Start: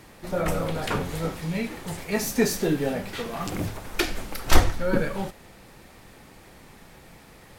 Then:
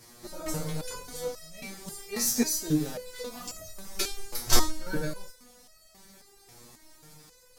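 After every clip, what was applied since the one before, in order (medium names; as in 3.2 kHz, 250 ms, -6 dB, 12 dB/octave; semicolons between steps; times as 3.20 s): resonant high shelf 3.8 kHz +9 dB, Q 1.5; resonator arpeggio 3.7 Hz 120–640 Hz; trim +5 dB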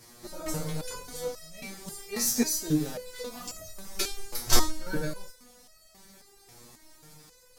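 no audible change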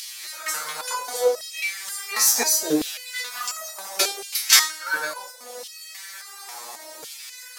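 in parallel at 0 dB: upward compressor, threshold -32 dBFS; on the sum: LFO high-pass saw down 0.71 Hz 470–3200 Hz; trim +3.5 dB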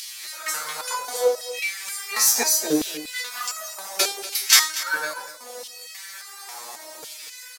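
delay 239 ms -15 dB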